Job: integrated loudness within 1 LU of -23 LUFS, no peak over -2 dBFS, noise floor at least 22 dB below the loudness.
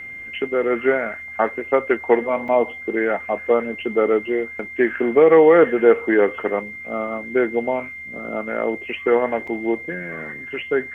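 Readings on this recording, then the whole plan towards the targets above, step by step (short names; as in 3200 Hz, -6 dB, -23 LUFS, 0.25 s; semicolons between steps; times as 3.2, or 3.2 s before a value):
dropouts 2; longest dropout 4.7 ms; steady tone 2100 Hz; tone level -32 dBFS; loudness -20.0 LUFS; peak -2.0 dBFS; loudness target -23.0 LUFS
-> interpolate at 2.48/9.47, 4.7 ms; notch 2100 Hz, Q 30; gain -3 dB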